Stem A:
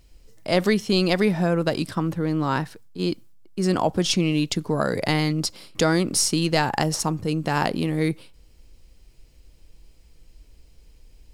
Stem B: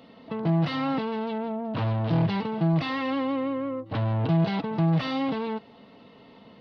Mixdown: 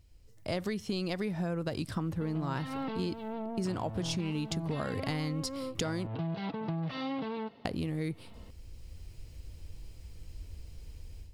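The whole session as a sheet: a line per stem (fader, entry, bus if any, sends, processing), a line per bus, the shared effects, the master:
-10.5 dB, 0.00 s, muted 6.07–7.65 s, no send, peaking EQ 89 Hz +14.5 dB 0.85 oct; level rider gain up to 12.5 dB
-5.5 dB, 1.90 s, no send, none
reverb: none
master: compression 6:1, threshold -31 dBFS, peak gain reduction 13 dB

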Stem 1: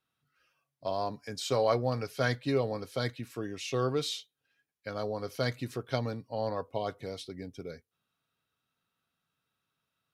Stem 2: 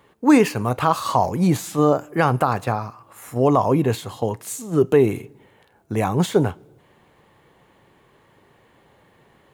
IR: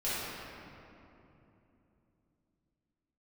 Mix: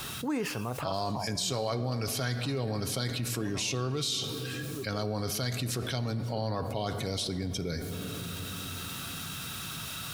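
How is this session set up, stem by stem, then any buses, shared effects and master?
-4.0 dB, 0.00 s, send -19 dB, ten-band graphic EQ 250 Hz -3 dB, 500 Hz -9 dB, 1 kHz -5 dB, 2 kHz -5 dB, 8 kHz +3 dB; level flattener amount 50%
-15.0 dB, 0.00 s, no send, auto duck -24 dB, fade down 1.85 s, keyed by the first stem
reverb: on, RT60 3.0 s, pre-delay 4 ms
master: level flattener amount 70%

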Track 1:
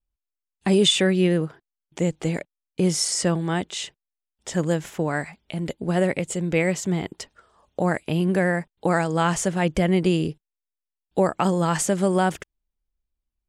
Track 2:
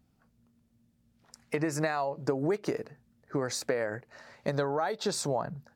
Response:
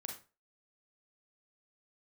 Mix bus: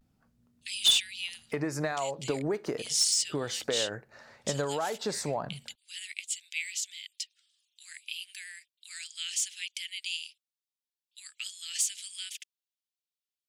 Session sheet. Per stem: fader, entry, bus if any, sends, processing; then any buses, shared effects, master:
-2.0 dB, 0.00 s, no send, steep high-pass 2.5 kHz 36 dB/octave; peaking EQ 4 kHz +4.5 dB 1.2 oct
-2.5 dB, 0.00 s, send -14 dB, vibrato 0.44 Hz 42 cents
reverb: on, RT60 0.30 s, pre-delay 32 ms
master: saturation -16.5 dBFS, distortion -13 dB

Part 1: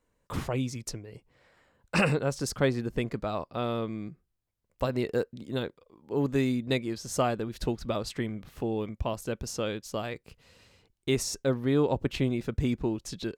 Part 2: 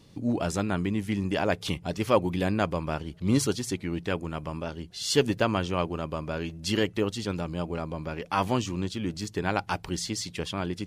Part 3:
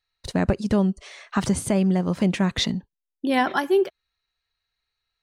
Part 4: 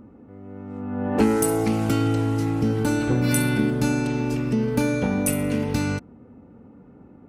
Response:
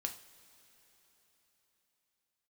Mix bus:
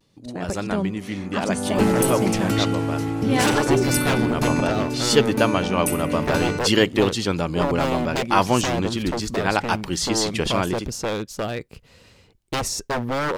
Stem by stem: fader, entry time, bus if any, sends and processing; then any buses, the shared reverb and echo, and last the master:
-3.0 dB, 1.45 s, no send, bass shelf 360 Hz +8 dB; wavefolder -23 dBFS
-6.5 dB, 0.00 s, send -21.5 dB, level rider gain up to 8 dB; vibrato 0.66 Hz 39 cents; auto duck -10 dB, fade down 0.85 s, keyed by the third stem
-11.0 dB, 0.00 s, no send, none
-7.5 dB, 0.60 s, no send, none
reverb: on, pre-delay 3 ms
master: bass shelf 230 Hz -5.5 dB; level rider gain up to 9 dB

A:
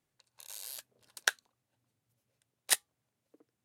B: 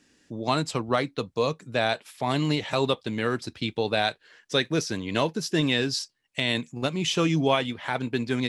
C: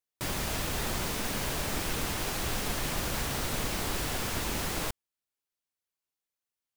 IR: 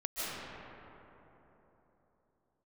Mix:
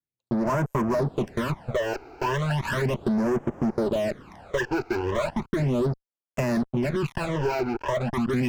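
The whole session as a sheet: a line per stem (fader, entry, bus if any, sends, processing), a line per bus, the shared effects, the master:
-13.0 dB, 0.00 s, no send, none
-2.5 dB, 0.00 s, no send, rippled EQ curve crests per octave 1.4, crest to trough 15 dB; LFO low-pass saw down 0.48 Hz 470–2200 Hz; fuzz box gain 35 dB, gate -35 dBFS
-4.0 dB, 0.55 s, no send, band-pass filter 500 Hz, Q 0.52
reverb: none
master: treble shelf 2.7 kHz -9.5 dB; phase shifter stages 12, 0.36 Hz, lowest notch 180–4100 Hz; compression, threshold -22 dBFS, peak gain reduction 6.5 dB

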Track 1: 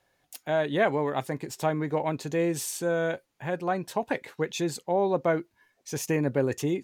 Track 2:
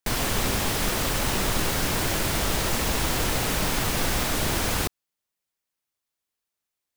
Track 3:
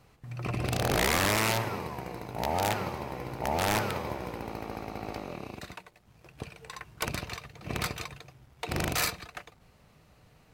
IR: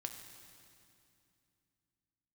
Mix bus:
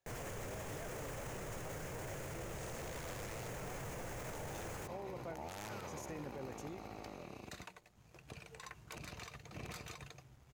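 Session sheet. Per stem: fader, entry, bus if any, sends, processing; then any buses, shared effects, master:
-17.0 dB, 0.00 s, no send, none
-11.5 dB, 0.00 s, no send, ten-band graphic EQ 125 Hz +9 dB, 250 Hz -4 dB, 500 Hz +10 dB, 2 kHz +4 dB, 4 kHz -9 dB, 16 kHz -4 dB
-5.5 dB, 1.90 s, no send, compression 3:1, threshold -33 dBFS, peak gain reduction 8 dB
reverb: none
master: peaking EQ 6.7 kHz +7 dB 0.33 oct; peak limiter -36.5 dBFS, peak gain reduction 15.5 dB

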